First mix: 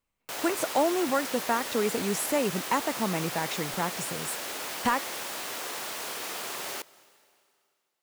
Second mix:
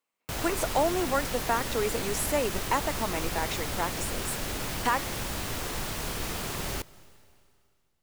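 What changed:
speech: add high-pass filter 320 Hz 12 dB per octave
background: remove high-pass filter 450 Hz 12 dB per octave

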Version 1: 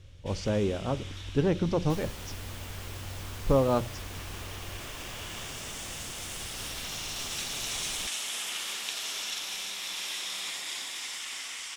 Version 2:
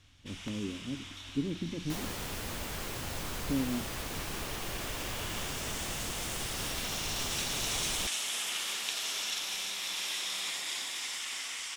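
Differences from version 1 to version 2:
speech: add formant resonators in series i
second sound +5.0 dB

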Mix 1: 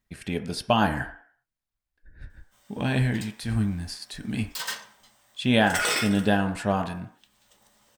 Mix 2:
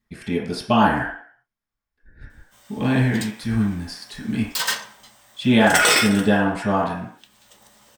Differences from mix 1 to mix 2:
speech: send +11.5 dB
background +9.0 dB

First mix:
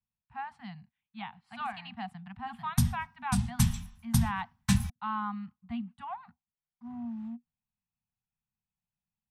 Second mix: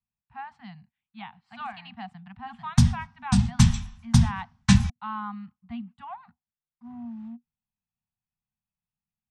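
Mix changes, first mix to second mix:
background +8.0 dB
master: add low-pass filter 7,300 Hz 24 dB per octave

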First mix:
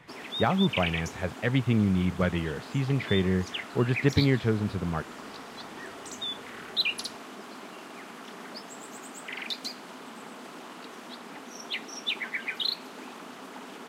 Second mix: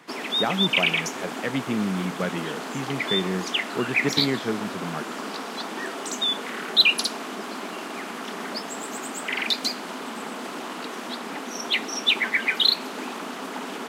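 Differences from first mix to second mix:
background +10.0 dB
master: add high-pass filter 170 Hz 24 dB per octave

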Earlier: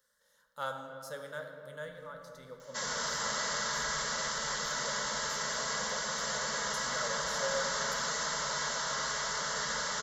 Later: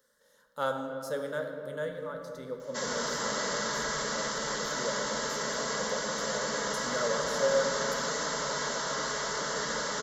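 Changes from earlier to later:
speech +3.0 dB
master: add parametric band 330 Hz +13 dB 1.4 octaves

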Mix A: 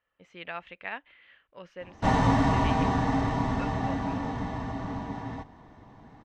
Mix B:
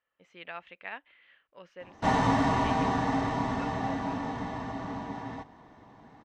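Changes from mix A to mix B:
speech −3.5 dB
master: add low-shelf EQ 120 Hz −11.5 dB

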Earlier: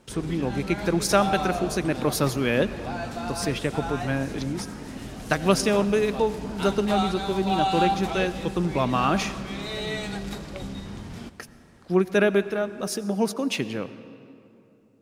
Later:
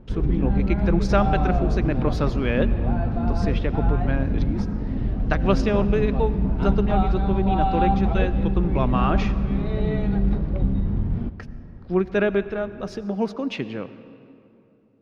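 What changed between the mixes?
background: add spectral tilt −4.5 dB per octave
master: add high-frequency loss of the air 220 metres

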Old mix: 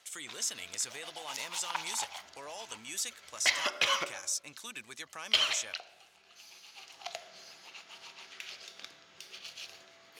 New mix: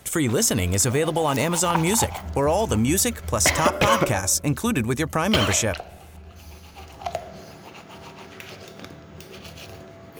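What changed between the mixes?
speech +9.0 dB
second sound +11.0 dB
master: remove resonant band-pass 4,300 Hz, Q 0.95

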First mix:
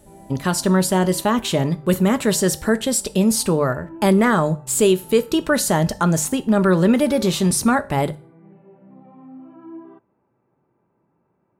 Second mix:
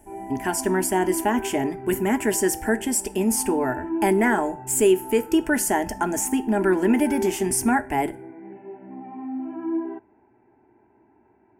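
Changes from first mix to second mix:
background +11.5 dB
master: add phaser with its sweep stopped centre 800 Hz, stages 8

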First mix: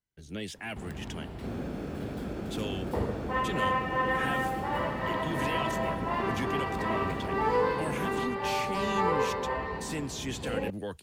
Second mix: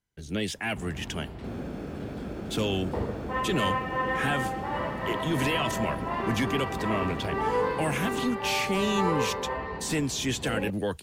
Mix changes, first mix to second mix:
speech +7.5 dB
first sound: add high-frequency loss of the air 52 metres

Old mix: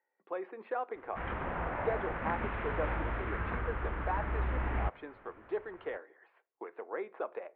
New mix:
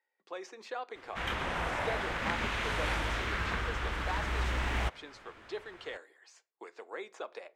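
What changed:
speech −5.0 dB
master: remove Gaussian smoothing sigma 4.5 samples

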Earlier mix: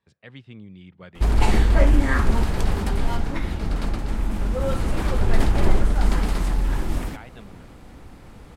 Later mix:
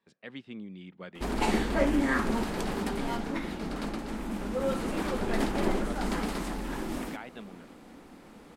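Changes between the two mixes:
background −4.0 dB
master: add low shelf with overshoot 150 Hz −13.5 dB, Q 1.5

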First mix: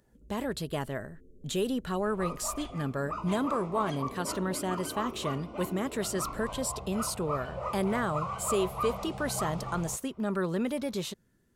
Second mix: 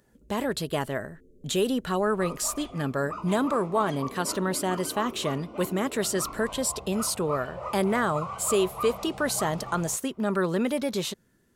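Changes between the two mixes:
speech +6.0 dB
first sound +3.0 dB
master: add low-shelf EQ 170 Hz −6.5 dB

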